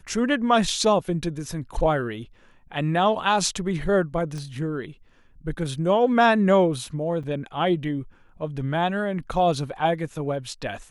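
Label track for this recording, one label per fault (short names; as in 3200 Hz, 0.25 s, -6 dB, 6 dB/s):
4.380000	4.380000	pop -25 dBFS
7.230000	7.240000	gap 5.6 ms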